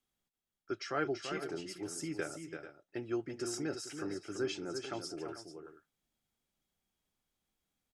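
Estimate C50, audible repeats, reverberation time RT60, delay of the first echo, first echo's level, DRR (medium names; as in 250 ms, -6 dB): no reverb, 2, no reverb, 336 ms, -7.5 dB, no reverb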